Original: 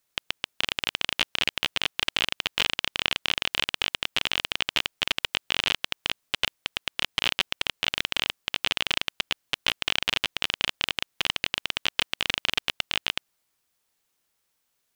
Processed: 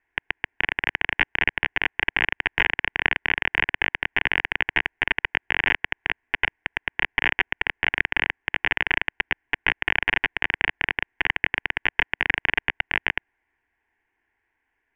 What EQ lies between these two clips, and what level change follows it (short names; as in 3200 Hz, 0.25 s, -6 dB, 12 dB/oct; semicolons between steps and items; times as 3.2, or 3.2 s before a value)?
synth low-pass 1800 Hz, resonance Q 2.7; low shelf 220 Hz +5.5 dB; fixed phaser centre 840 Hz, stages 8; +5.5 dB